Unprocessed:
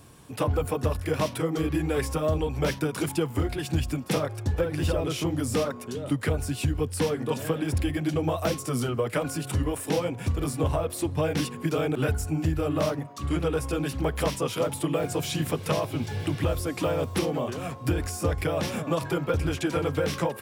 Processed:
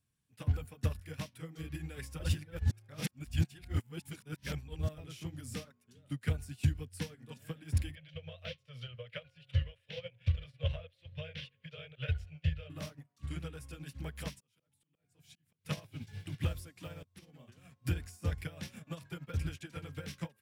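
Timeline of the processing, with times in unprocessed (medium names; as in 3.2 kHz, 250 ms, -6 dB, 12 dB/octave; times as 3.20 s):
2.19–4.98 s: reverse
7.95–12.70 s: FFT filter 120 Hz 0 dB, 180 Hz -8 dB, 310 Hz -24 dB, 540 Hz +9 dB, 810 Hz -10 dB, 3.2 kHz +8 dB, 8.2 kHz -23 dB
14.30–15.65 s: slow attack 600 ms
17.03–17.51 s: fade in, from -13.5 dB
whole clip: high-order bell 590 Hz -10.5 dB 2.4 oct; upward expansion 2.5:1, over -41 dBFS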